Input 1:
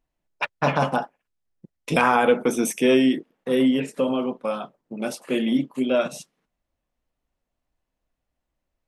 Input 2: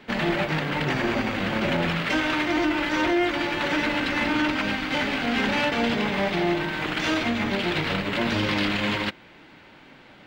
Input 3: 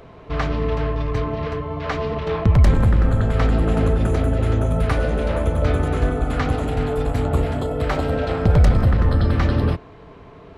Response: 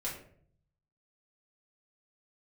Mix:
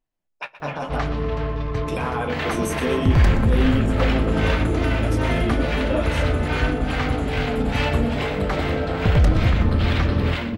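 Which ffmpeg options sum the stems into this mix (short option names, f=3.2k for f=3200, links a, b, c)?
-filter_complex "[0:a]alimiter=limit=-13dB:level=0:latency=1:release=37,flanger=delay=7.8:depth=8.2:regen=-34:speed=0.96:shape=triangular,volume=-1.5dB,asplit=3[a][b][c];[b]volume=-22.5dB[d];[c]volume=-14dB[e];[1:a]acrossover=split=460[f][g];[f]aeval=exprs='val(0)*(1-1/2+1/2*cos(2*PI*2.4*n/s))':c=same[h];[g]aeval=exprs='val(0)*(1-1/2-1/2*cos(2*PI*2.4*n/s))':c=same[i];[h][i]amix=inputs=2:normalize=0,adelay=2200,volume=-3dB,asplit=3[j][k][l];[k]volume=-4dB[m];[l]volume=-11dB[n];[2:a]adelay=600,volume=-2.5dB,asplit=2[o][p];[p]volume=-14dB[q];[3:a]atrim=start_sample=2205[r];[d][m]amix=inputs=2:normalize=0[s];[s][r]afir=irnorm=-1:irlink=0[t];[e][n][q]amix=inputs=3:normalize=0,aecho=0:1:123|246|369|492|615|738|861|984|1107:1|0.58|0.336|0.195|0.113|0.0656|0.0381|0.0221|0.0128[u];[a][j][o][t][u]amix=inputs=5:normalize=0"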